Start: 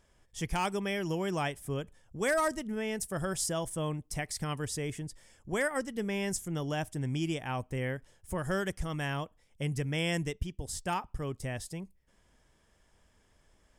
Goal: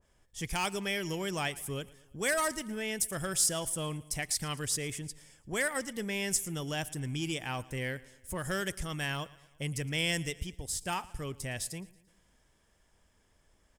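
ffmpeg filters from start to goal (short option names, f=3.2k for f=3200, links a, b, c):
-filter_complex "[0:a]highshelf=f=10k:g=5,asplit=2[a][b];[b]asoftclip=type=hard:threshold=-33dB,volume=-8.5dB[c];[a][c]amix=inputs=2:normalize=0,aecho=1:1:113|226|339|452:0.0891|0.0481|0.026|0.014,adynamicequalizer=threshold=0.00447:dfrequency=1600:dqfactor=0.7:tfrequency=1600:tqfactor=0.7:attack=5:release=100:ratio=0.375:range=4:mode=boostabove:tftype=highshelf,volume=-5dB"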